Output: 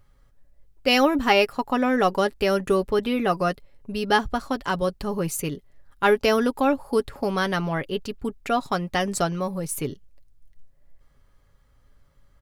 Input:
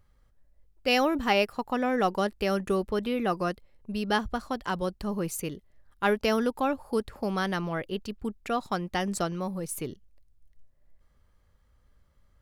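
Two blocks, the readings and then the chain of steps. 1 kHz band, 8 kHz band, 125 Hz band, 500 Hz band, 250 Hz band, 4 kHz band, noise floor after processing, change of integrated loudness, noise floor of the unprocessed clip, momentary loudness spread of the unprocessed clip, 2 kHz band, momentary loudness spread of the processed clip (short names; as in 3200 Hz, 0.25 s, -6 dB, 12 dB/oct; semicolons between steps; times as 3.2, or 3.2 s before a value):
+5.5 dB, +5.5 dB, +4.5 dB, +6.0 dB, +4.5 dB, +6.0 dB, -60 dBFS, +5.5 dB, -65 dBFS, 10 LU, +5.5 dB, 11 LU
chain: comb 7.2 ms, depth 40%; gain +5 dB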